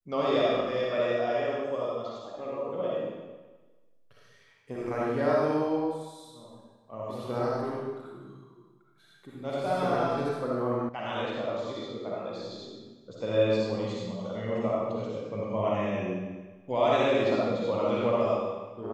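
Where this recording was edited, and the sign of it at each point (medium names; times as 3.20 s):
10.89 s: sound stops dead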